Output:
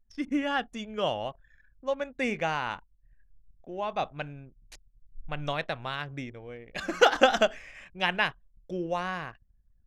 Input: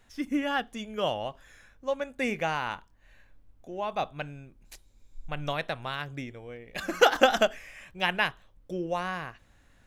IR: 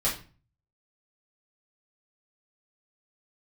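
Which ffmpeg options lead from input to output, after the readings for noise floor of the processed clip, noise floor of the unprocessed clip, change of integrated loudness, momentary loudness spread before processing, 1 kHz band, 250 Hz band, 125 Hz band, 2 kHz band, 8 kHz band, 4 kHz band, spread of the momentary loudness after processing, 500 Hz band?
-65 dBFS, -61 dBFS, 0.0 dB, 18 LU, 0.0 dB, 0.0 dB, 0.0 dB, 0.0 dB, -1.5 dB, 0.0 dB, 18 LU, 0.0 dB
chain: -af "anlmdn=0.00398,lowpass=8k"

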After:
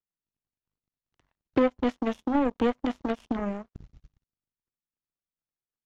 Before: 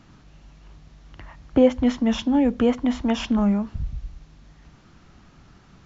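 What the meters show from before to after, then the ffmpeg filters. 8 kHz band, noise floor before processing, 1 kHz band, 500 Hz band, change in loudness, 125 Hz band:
n/a, -53 dBFS, -0.5 dB, -5.5 dB, -6.5 dB, -12.5 dB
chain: -filter_complex "[0:a]acrossover=split=290|610[a][b][c];[a]acompressor=threshold=-30dB:ratio=4[d];[b]acompressor=threshold=-23dB:ratio=4[e];[c]acompressor=threshold=-36dB:ratio=4[f];[d][e][f]amix=inputs=3:normalize=0,aeval=exprs='0.299*(cos(1*acos(clip(val(0)/0.299,-1,1)))-cos(1*PI/2))+0.015*(cos(2*acos(clip(val(0)/0.299,-1,1)))-cos(2*PI/2))+0.00944*(cos(3*acos(clip(val(0)/0.299,-1,1)))-cos(3*PI/2))+0.0119*(cos(5*acos(clip(val(0)/0.299,-1,1)))-cos(5*PI/2))+0.0473*(cos(7*acos(clip(val(0)/0.299,-1,1)))-cos(7*PI/2))':c=same"

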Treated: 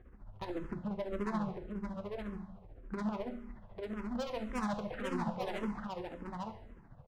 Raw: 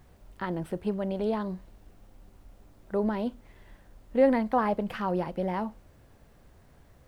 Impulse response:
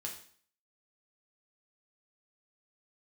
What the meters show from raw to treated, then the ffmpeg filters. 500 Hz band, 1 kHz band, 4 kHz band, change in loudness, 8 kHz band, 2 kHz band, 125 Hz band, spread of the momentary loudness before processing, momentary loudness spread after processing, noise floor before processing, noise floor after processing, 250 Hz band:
-11.0 dB, -8.5 dB, -1.5 dB, -10.0 dB, n/a, -5.5 dB, -5.5 dB, 12 LU, 11 LU, -58 dBFS, -57 dBFS, -7.0 dB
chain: -filter_complex "[0:a]lowpass=1.6k,asoftclip=type=tanh:threshold=-28.5dB,tremolo=f=14:d=0.83,asoftclip=type=hard:threshold=-36.5dB,aecho=1:1:846:0.631,asplit=2[a][b];[1:a]atrim=start_sample=2205,asetrate=26019,aresample=44100,lowshelf=f=160:g=5[c];[b][c]afir=irnorm=-1:irlink=0,volume=-4.5dB[d];[a][d]amix=inputs=2:normalize=0,asplit=2[e][f];[f]afreqshift=-1.8[g];[e][g]amix=inputs=2:normalize=1,volume=1dB"

